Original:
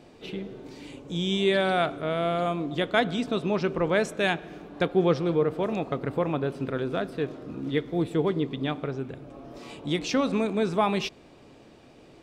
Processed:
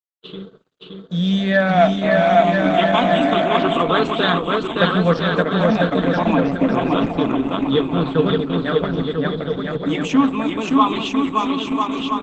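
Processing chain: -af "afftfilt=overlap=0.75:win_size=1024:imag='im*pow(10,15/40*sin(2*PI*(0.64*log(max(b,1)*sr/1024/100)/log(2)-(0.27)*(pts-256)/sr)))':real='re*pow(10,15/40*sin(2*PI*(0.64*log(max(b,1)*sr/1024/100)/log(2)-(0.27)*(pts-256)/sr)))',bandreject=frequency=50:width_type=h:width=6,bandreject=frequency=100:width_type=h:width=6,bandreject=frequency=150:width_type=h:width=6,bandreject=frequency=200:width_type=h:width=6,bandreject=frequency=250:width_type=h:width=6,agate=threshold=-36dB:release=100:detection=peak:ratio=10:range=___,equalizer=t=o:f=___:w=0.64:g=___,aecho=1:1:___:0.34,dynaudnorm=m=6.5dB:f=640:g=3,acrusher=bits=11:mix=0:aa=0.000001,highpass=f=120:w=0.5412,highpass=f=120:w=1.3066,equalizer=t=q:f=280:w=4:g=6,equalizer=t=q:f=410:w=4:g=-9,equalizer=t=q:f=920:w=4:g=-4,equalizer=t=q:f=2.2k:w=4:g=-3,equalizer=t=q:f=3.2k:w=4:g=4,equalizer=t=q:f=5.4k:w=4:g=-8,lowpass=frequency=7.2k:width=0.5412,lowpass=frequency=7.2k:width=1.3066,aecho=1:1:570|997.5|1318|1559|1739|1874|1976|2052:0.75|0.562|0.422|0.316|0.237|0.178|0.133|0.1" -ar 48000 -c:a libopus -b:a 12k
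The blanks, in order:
-51dB, 1.1k, 8, 4.5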